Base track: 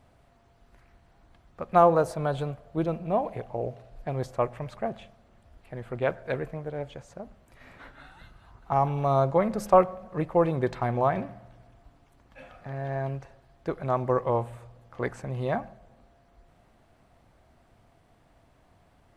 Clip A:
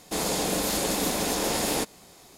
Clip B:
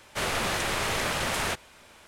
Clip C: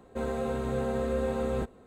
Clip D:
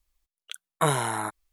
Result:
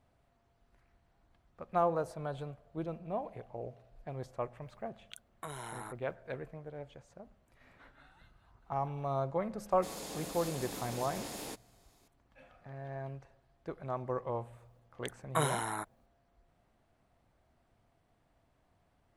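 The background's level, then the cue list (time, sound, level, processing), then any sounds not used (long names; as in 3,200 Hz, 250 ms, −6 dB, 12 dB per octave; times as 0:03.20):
base track −11 dB
0:04.62: mix in D −7.5 dB + downward compressor 3 to 1, threshold −35 dBFS
0:09.71: mix in A −16.5 dB
0:14.54: mix in D −7.5 dB
not used: B, C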